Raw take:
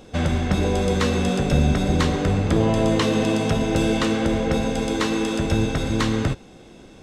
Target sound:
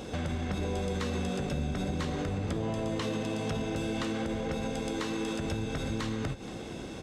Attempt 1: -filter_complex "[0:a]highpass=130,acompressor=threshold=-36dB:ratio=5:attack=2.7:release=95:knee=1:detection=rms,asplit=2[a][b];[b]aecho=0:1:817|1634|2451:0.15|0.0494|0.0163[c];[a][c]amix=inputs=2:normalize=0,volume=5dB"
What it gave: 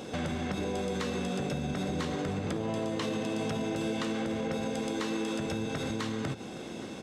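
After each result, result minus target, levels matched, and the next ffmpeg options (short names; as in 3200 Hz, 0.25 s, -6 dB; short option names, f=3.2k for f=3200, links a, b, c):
echo 0.343 s late; 125 Hz band -3.0 dB
-filter_complex "[0:a]highpass=130,acompressor=threshold=-36dB:ratio=5:attack=2.7:release=95:knee=1:detection=rms,asplit=2[a][b];[b]aecho=0:1:474|948|1422:0.15|0.0494|0.0163[c];[a][c]amix=inputs=2:normalize=0,volume=5dB"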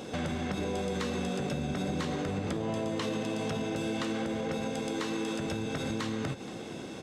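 125 Hz band -3.0 dB
-filter_complex "[0:a]highpass=37,acompressor=threshold=-36dB:ratio=5:attack=2.7:release=95:knee=1:detection=rms,asplit=2[a][b];[b]aecho=0:1:474|948|1422:0.15|0.0494|0.0163[c];[a][c]amix=inputs=2:normalize=0,volume=5dB"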